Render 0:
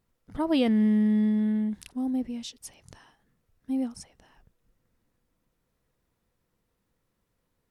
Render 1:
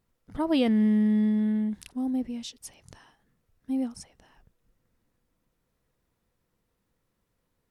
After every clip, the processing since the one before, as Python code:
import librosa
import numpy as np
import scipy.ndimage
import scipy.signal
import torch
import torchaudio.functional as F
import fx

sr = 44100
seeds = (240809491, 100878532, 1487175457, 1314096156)

y = x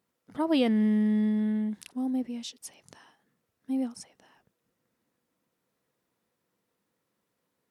y = scipy.signal.sosfilt(scipy.signal.butter(2, 190.0, 'highpass', fs=sr, output='sos'), x)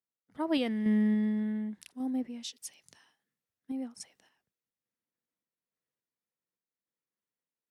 y = fx.peak_eq(x, sr, hz=1900.0, db=4.0, octaves=0.77)
y = fx.tremolo_random(y, sr, seeds[0], hz=3.5, depth_pct=55)
y = fx.band_widen(y, sr, depth_pct=40)
y = y * librosa.db_to_amplitude(-2.0)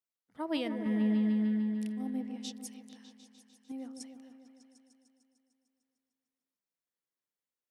y = fx.low_shelf(x, sr, hz=220.0, db=-6.0)
y = fx.echo_opening(y, sr, ms=150, hz=750, octaves=1, feedback_pct=70, wet_db=-6)
y = y * librosa.db_to_amplitude(-3.0)